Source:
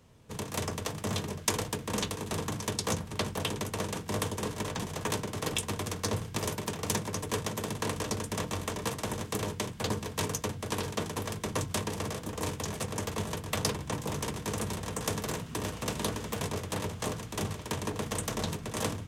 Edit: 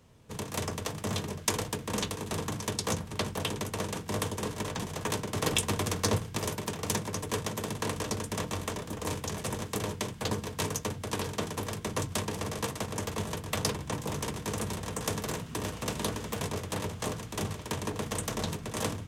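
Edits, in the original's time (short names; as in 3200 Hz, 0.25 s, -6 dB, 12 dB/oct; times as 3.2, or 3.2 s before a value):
5.33–6.18 gain +4 dB
8.82–9.09 swap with 12.18–12.86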